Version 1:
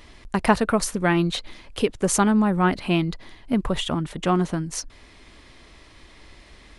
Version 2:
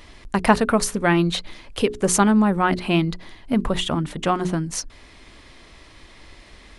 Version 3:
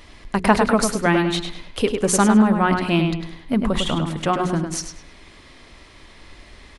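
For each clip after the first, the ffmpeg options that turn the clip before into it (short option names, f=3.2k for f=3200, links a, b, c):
-af "bandreject=f=60:t=h:w=6,bandreject=f=120:t=h:w=6,bandreject=f=180:t=h:w=6,bandreject=f=240:t=h:w=6,bandreject=f=300:t=h:w=6,bandreject=f=360:t=h:w=6,bandreject=f=420:t=h:w=6,volume=2.5dB"
-filter_complex "[0:a]asplit=2[a][b];[b]adelay=102,lowpass=f=4.3k:p=1,volume=-5dB,asplit=2[c][d];[d]adelay=102,lowpass=f=4.3k:p=1,volume=0.36,asplit=2[e][f];[f]adelay=102,lowpass=f=4.3k:p=1,volume=0.36,asplit=2[g][h];[h]adelay=102,lowpass=f=4.3k:p=1,volume=0.36[i];[a][c][e][g][i]amix=inputs=5:normalize=0"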